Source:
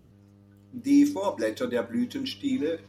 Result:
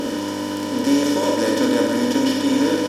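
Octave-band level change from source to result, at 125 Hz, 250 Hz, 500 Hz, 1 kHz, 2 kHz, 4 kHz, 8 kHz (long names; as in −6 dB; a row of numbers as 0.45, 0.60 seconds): +9.5, +7.0, +9.5, +12.0, +11.5, +12.5, +15.5 decibels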